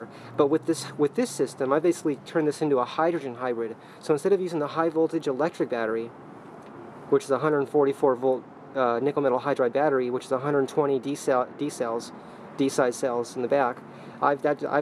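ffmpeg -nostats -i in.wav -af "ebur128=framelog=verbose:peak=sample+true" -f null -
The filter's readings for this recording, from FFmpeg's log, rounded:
Integrated loudness:
  I:         -25.8 LUFS
  Threshold: -36.2 LUFS
Loudness range:
  LRA:         2.7 LU
  Threshold: -46.2 LUFS
  LRA low:   -27.5 LUFS
  LRA high:  -24.8 LUFS
Sample peak:
  Peak:       -8.0 dBFS
True peak:
  Peak:       -8.0 dBFS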